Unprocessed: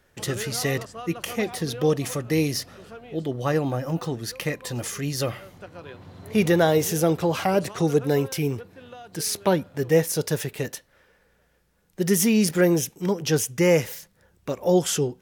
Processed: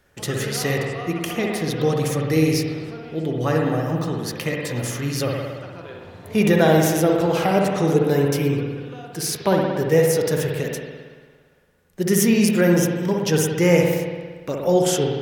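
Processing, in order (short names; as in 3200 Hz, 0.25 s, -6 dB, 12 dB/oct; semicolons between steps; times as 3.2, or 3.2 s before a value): spring tank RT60 1.5 s, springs 57 ms, chirp 65 ms, DRR 0 dB; gain +1 dB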